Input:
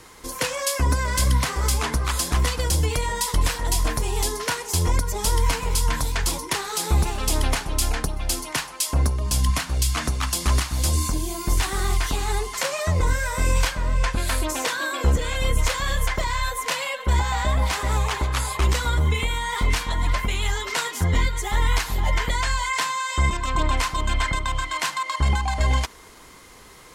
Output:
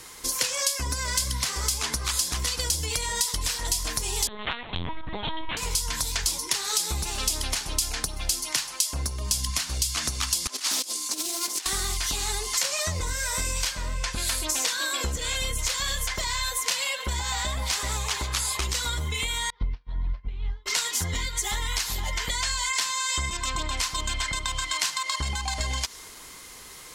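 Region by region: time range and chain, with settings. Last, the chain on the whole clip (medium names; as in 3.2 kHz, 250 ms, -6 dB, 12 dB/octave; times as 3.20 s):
4.27–5.57 s: hum notches 50/100/150/200/250/300 Hz + LPC vocoder at 8 kHz pitch kept
10.47–11.66 s: steep high-pass 250 Hz + compressor with a negative ratio -34 dBFS, ratio -0.5 + loudspeaker Doppler distortion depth 0.29 ms
19.50–20.66 s: steep low-pass 5.4 kHz 48 dB/octave + tilt EQ -4 dB/octave + upward expansion 2.5:1, over -20 dBFS
whole clip: treble shelf 2.3 kHz +11 dB; compression, threshold -23 dBFS; dynamic bell 5.3 kHz, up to +6 dB, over -41 dBFS, Q 0.87; trim -3.5 dB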